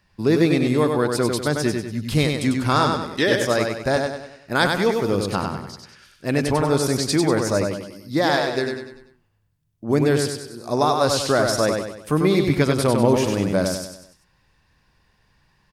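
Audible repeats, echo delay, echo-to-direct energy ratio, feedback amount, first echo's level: 5, 97 ms, -3.5 dB, 44%, -4.5 dB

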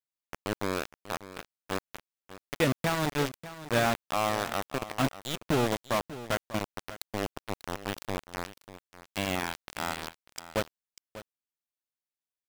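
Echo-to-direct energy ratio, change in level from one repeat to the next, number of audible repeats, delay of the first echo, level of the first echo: -15.0 dB, no steady repeat, 1, 0.593 s, -15.0 dB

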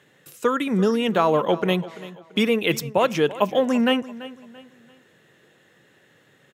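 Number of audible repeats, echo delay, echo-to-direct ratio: 3, 0.338 s, -16.5 dB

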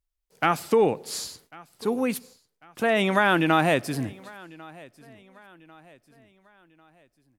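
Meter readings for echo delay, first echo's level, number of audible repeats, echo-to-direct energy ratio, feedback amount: 1.096 s, -23.0 dB, 2, -22.0 dB, 44%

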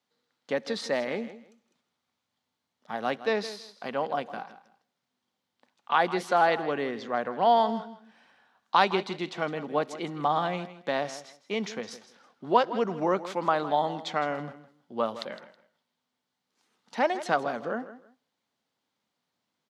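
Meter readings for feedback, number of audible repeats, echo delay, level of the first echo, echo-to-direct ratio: 22%, 2, 0.161 s, -14.5 dB, -14.5 dB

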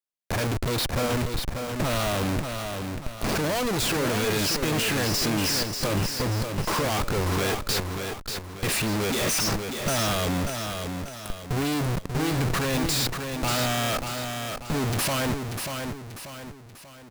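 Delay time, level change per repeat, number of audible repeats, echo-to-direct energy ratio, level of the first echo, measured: 0.588 s, -7.5 dB, 3, -5.0 dB, -6.0 dB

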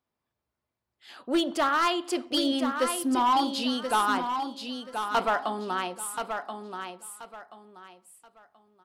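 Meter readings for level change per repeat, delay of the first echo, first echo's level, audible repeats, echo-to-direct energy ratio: -11.5 dB, 1.03 s, -7.0 dB, 3, -6.5 dB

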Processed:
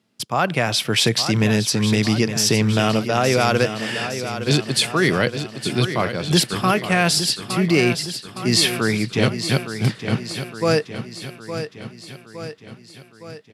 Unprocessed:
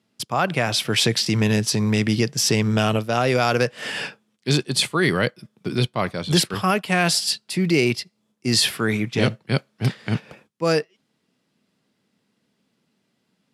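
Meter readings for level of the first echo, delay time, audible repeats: -10.0 dB, 0.863 s, 6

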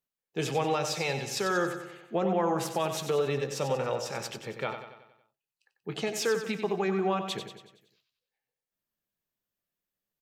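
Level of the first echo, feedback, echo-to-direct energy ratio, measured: -8.5 dB, 52%, -7.0 dB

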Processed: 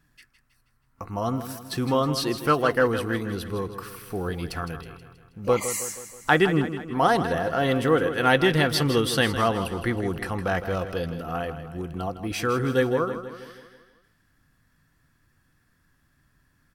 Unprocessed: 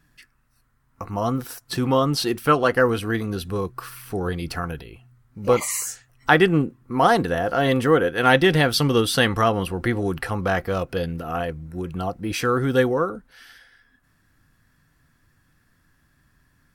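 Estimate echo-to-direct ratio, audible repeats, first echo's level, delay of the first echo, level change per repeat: -9.5 dB, 5, -11.0 dB, 0.16 s, -5.5 dB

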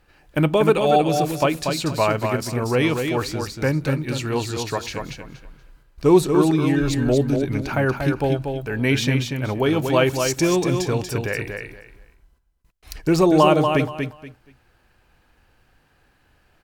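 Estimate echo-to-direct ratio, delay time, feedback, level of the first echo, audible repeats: -5.5 dB, 0.237 s, 22%, -5.5 dB, 3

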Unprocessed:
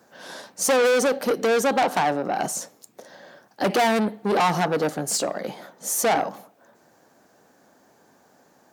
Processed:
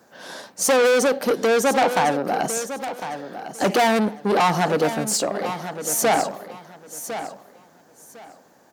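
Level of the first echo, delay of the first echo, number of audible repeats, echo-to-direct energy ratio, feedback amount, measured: -11.0 dB, 1.054 s, 2, -11.0 dB, 21%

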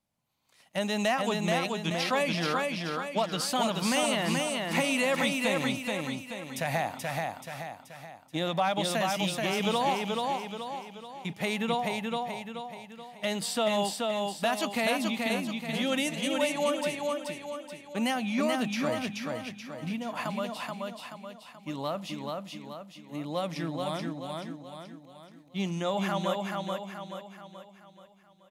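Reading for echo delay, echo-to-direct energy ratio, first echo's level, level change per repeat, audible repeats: 0.43 s, -2.0 dB, -3.0 dB, -6.5 dB, 5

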